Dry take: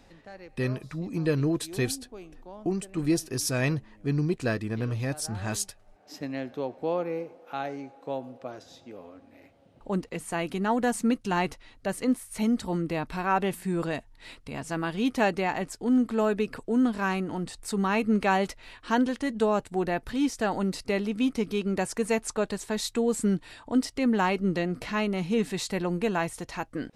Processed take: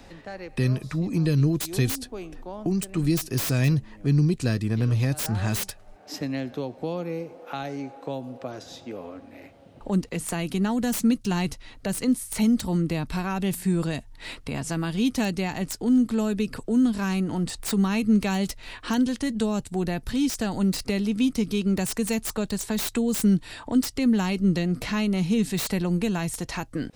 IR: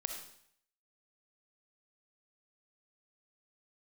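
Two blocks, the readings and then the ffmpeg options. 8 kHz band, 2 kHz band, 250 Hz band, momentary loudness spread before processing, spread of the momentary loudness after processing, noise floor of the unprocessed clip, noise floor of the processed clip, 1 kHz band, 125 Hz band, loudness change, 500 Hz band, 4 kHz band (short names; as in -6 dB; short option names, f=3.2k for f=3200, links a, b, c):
+3.5 dB, -1.5 dB, +4.0 dB, 11 LU, 12 LU, -56 dBFS, -48 dBFS, -4.5 dB, +7.5 dB, +3.0 dB, -2.0 dB, +3.5 dB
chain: -filter_complex "[0:a]acrossover=split=230|3500[a][b][c];[b]acompressor=threshold=-41dB:ratio=4[d];[c]aeval=exprs='(mod(39.8*val(0)+1,2)-1)/39.8':c=same[e];[a][d][e]amix=inputs=3:normalize=0,volume=8.5dB"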